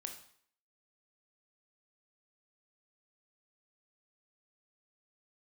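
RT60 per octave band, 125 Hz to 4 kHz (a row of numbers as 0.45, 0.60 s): 0.50, 0.55, 0.55, 0.60, 0.55, 0.55 s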